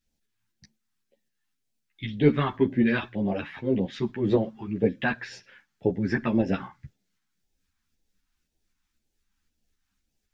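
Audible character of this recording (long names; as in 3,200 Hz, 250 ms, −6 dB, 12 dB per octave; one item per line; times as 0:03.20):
phaser sweep stages 2, 1.9 Hz, lowest notch 510–1,200 Hz
tremolo saw up 3.9 Hz, depth 35%
a shimmering, thickened sound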